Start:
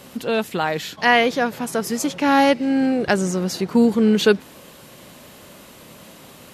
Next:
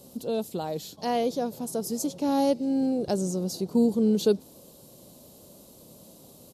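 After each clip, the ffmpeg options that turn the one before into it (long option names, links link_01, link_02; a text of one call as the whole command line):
ffmpeg -i in.wav -af "firequalizer=gain_entry='entry(570,0);entry(1300,-15);entry(1800,-22);entry(4100,-2);entry(11000,3)':delay=0.05:min_phase=1,volume=-6.5dB" out.wav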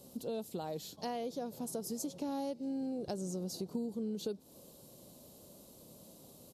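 ffmpeg -i in.wav -af "acompressor=threshold=-30dB:ratio=6,volume=-5.5dB" out.wav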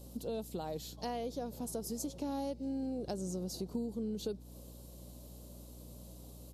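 ffmpeg -i in.wav -af "aeval=exprs='val(0)+0.00282*(sin(2*PI*60*n/s)+sin(2*PI*2*60*n/s)/2+sin(2*PI*3*60*n/s)/3+sin(2*PI*4*60*n/s)/4+sin(2*PI*5*60*n/s)/5)':channel_layout=same" out.wav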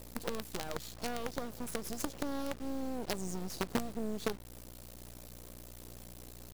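ffmpeg -i in.wav -af "acrusher=bits=6:dc=4:mix=0:aa=0.000001,volume=3.5dB" out.wav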